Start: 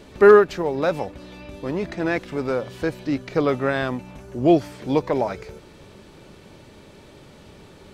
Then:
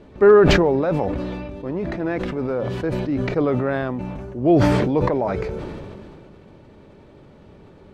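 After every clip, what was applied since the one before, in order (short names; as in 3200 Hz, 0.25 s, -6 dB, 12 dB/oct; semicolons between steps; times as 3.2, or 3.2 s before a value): LPF 1000 Hz 6 dB/oct; sustainer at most 23 dB/s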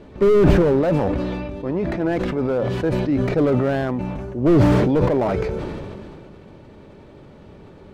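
slew limiter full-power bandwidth 68 Hz; gain +3 dB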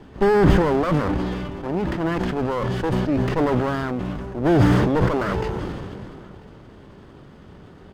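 minimum comb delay 0.61 ms; outdoor echo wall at 170 m, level -23 dB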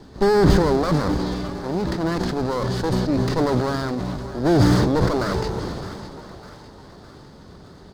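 resonant high shelf 3500 Hz +6 dB, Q 3; split-band echo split 540 Hz, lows 0.162 s, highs 0.608 s, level -14 dB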